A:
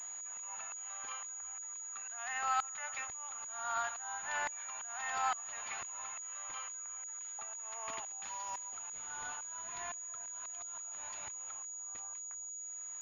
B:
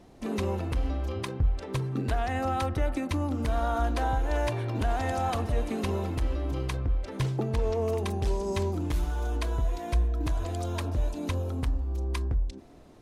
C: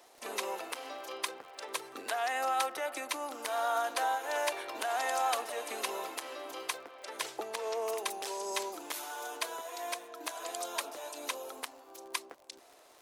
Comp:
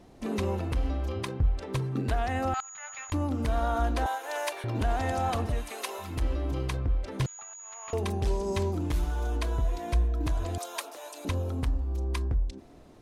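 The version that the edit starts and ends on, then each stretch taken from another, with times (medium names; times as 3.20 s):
B
2.54–3.12 s: from A
4.06–4.64 s: from C
5.61–6.10 s: from C, crossfade 0.24 s
7.26–7.93 s: from A
10.58–11.25 s: from C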